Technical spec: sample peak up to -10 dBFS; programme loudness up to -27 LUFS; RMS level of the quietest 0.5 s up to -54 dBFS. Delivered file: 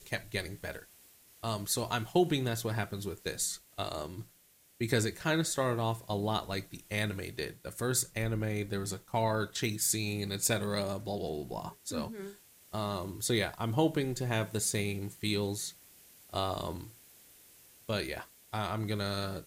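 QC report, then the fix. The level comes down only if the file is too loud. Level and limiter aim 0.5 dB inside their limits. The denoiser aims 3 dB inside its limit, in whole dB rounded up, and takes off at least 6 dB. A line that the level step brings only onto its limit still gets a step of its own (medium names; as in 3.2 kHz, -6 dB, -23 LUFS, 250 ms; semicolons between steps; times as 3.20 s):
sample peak -15.0 dBFS: pass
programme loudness -33.5 LUFS: pass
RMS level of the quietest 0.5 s -64 dBFS: pass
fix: none needed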